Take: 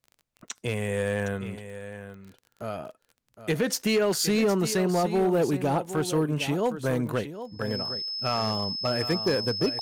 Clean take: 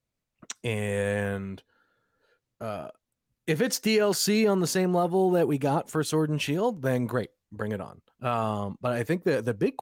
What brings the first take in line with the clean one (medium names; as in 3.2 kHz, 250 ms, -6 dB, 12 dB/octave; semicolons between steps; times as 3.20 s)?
clip repair -18 dBFS; de-click; band-stop 5.2 kHz, Q 30; inverse comb 763 ms -12 dB